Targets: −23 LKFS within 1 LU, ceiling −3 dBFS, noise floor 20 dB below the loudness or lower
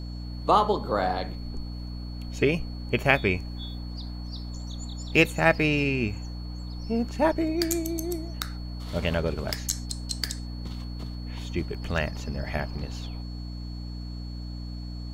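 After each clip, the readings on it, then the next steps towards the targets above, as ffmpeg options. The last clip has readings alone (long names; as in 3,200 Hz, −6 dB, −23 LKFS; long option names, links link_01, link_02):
mains hum 60 Hz; hum harmonics up to 300 Hz; level of the hum −33 dBFS; interfering tone 4,400 Hz; level of the tone −48 dBFS; integrated loudness −28.5 LKFS; sample peak −4.0 dBFS; target loudness −23.0 LKFS
→ -af "bandreject=frequency=60:width_type=h:width=6,bandreject=frequency=120:width_type=h:width=6,bandreject=frequency=180:width_type=h:width=6,bandreject=frequency=240:width_type=h:width=6,bandreject=frequency=300:width_type=h:width=6"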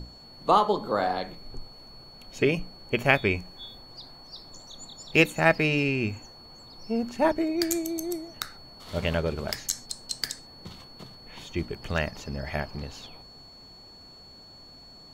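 mains hum none found; interfering tone 4,400 Hz; level of the tone −48 dBFS
→ -af "bandreject=frequency=4400:width=30"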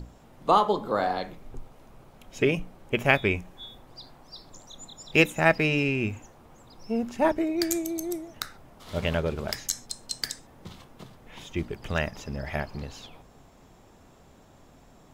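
interfering tone none found; integrated loudness −27.0 LKFS; sample peak −3.5 dBFS; target loudness −23.0 LKFS
→ -af "volume=4dB,alimiter=limit=-3dB:level=0:latency=1"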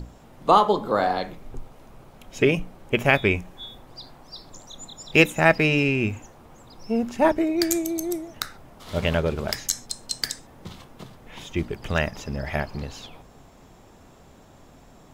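integrated loudness −23.5 LKFS; sample peak −3.0 dBFS; background noise floor −51 dBFS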